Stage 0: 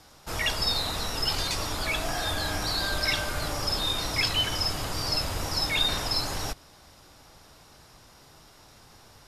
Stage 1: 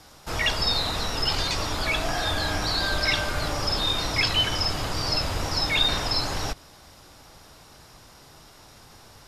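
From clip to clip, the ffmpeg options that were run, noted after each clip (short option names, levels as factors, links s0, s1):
-filter_complex "[0:a]acrossover=split=6600[s0][s1];[s1]acompressor=threshold=0.00355:ratio=4:attack=1:release=60[s2];[s0][s2]amix=inputs=2:normalize=0,volume=1.5"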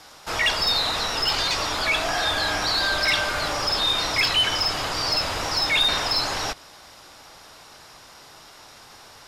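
-filter_complex "[0:a]asplit=2[s0][s1];[s1]highpass=f=720:p=1,volume=4.47,asoftclip=type=tanh:threshold=0.355[s2];[s0][s2]amix=inputs=2:normalize=0,lowpass=f=6400:p=1,volume=0.501,volume=0.794"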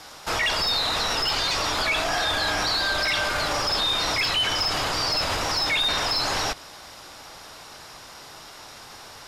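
-af "alimiter=limit=0.0944:level=0:latency=1:release=28,volume=1.5"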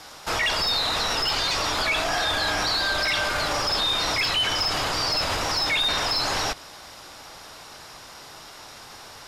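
-af anull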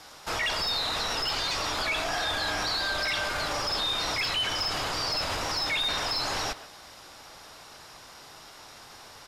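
-filter_complex "[0:a]asplit=2[s0][s1];[s1]adelay=130,highpass=300,lowpass=3400,asoftclip=type=hard:threshold=0.0501,volume=0.224[s2];[s0][s2]amix=inputs=2:normalize=0,volume=0.562"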